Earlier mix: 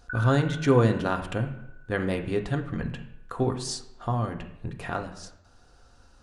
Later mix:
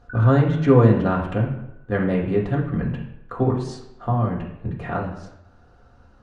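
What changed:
speech: send +10.0 dB; master: add low-pass 1.3 kHz 6 dB/octave

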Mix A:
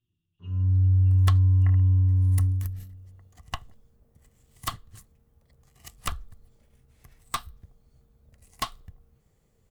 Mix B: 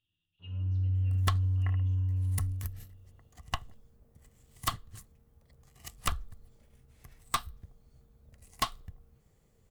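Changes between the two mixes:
speech +7.0 dB; first sound: send -10.0 dB

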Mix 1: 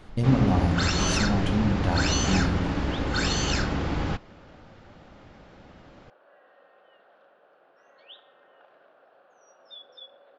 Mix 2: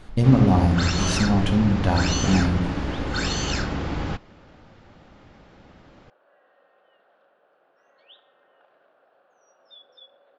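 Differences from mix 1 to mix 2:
speech +5.5 dB; second sound -3.5 dB

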